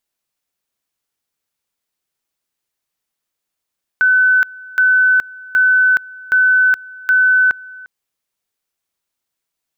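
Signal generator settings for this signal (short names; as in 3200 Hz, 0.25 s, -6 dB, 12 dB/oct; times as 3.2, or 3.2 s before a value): two-level tone 1510 Hz -8.5 dBFS, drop 23 dB, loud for 0.42 s, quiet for 0.35 s, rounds 5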